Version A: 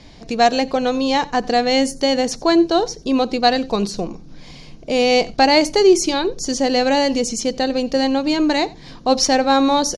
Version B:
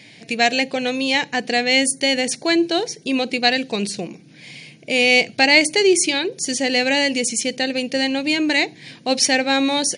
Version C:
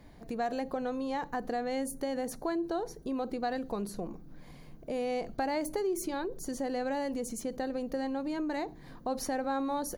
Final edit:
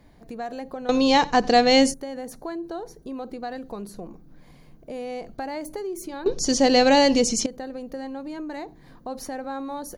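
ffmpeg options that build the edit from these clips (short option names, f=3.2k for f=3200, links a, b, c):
-filter_complex "[0:a]asplit=2[a][b];[2:a]asplit=3[c][d][e];[c]atrim=end=0.892[f];[a]atrim=start=0.888:end=1.942[g];[d]atrim=start=1.938:end=6.262[h];[b]atrim=start=6.258:end=7.462[i];[e]atrim=start=7.458[j];[f][g]acrossfade=d=0.004:c1=hsin:c2=hsin[k];[k][h]acrossfade=d=0.004:c1=hsin:c2=hsin[l];[l][i]acrossfade=d=0.004:c1=hsin:c2=hsin[m];[m][j]acrossfade=d=0.004:c1=hsin:c2=hsin"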